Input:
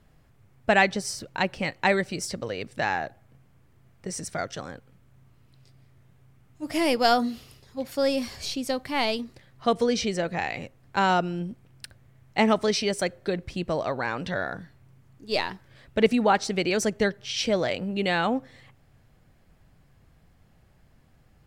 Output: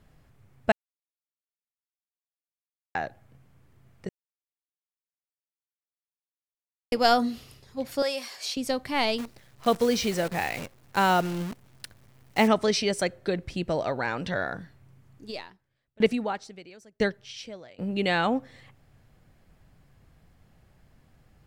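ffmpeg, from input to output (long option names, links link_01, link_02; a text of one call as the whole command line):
ffmpeg -i in.wav -filter_complex "[0:a]asettb=1/sr,asplit=3[link_01][link_02][link_03];[link_01]atrim=end=8.024[link_04];[link_02]atrim=start=8.02:end=8.57,asetpts=PTS-STARTPTS,afade=type=in:duration=0.004:curve=qsin,afade=type=out:start_time=0.546:duration=0.004:curve=qsin,highpass=640[link_05];[link_03]atrim=start=8.566[link_06];[link_04][link_05]acrossfade=duration=0.004:curve1=hsin:curve2=qsin[link_07];[link_07][link_06]acrossfade=duration=0.004:curve1=qsin:curve2=hsin,asettb=1/sr,asplit=3[link_08][link_09][link_10];[link_08]atrim=end=9.184[link_11];[link_09]atrim=start=9.18:end=12.48,asetpts=PTS-STARTPTS,afade=type=in:duration=0.004:curve=qsin,afade=type=out:start_time=3.296:duration=0.004:curve=qsin,acrusher=bits=7:dc=4:mix=0:aa=0.000001[link_12];[link_10]atrim=start=12.476[link_13];[link_11][link_12]acrossfade=duration=0.004:curve1=hsin:curve2=qsin[link_14];[link_14][link_13]acrossfade=duration=0.004:curve1=qsin:curve2=hsin,asettb=1/sr,asplit=3[link_15][link_16][link_17];[link_15]atrim=end=13.494[link_18];[link_16]atrim=start=13.49:end=14.21,asetpts=PTS-STARTPTS,afade=type=in:duration=0.004:curve=qsin,afade=type=out:start_time=0.716:duration=0.004:curve=qsin,bandreject=frequency=1100:width=10[link_19];[link_17]atrim=start=14.206[link_20];[link_18][link_19]acrossfade=duration=0.004:curve1=hsin:curve2=qsin[link_21];[link_21][link_20]acrossfade=duration=0.004:curve1=qsin:curve2=hsin,asplit=3[link_22][link_23][link_24];[link_22]afade=type=out:start_time=15.3:duration=0.02[link_25];[link_23]aeval=exprs='val(0)*pow(10,-33*if(lt(mod(1*n/s,1),2*abs(1)/1000),1-mod(1*n/s,1)/(2*abs(1)/1000),(mod(1*n/s,1)-2*abs(1)/1000)/(1-2*abs(1)/1000))/20)':channel_layout=same,afade=type=in:start_time=15.3:duration=0.02,afade=type=out:start_time=17.78:duration=0.02[link_26];[link_24]afade=type=in:start_time=17.78:duration=0.02[link_27];[link_25][link_26][link_27]amix=inputs=3:normalize=0,asplit=5[link_28][link_29][link_30][link_31][link_32];[link_28]atrim=end=0.72,asetpts=PTS-STARTPTS,afade=type=out:start_time=0.716:duration=0.004:curve=hsin[link_33];[link_29]atrim=start=0.72:end=2.95,asetpts=PTS-STARTPTS,volume=0[link_34];[link_30]atrim=start=2.95:end=4.09,asetpts=PTS-STARTPTS,afade=type=in:duration=0.004:curve=hsin,afade=type=out:start_time=1.136:duration=0.004:curve=hsin[link_35];[link_31]atrim=start=4.09:end=6.92,asetpts=PTS-STARTPTS,volume=0[link_36];[link_32]atrim=start=6.92,asetpts=PTS-STARTPTS,afade=type=in:duration=0.004:curve=hsin[link_37];[link_33][link_34][link_35][link_36][link_37]concat=n=5:v=0:a=1" out.wav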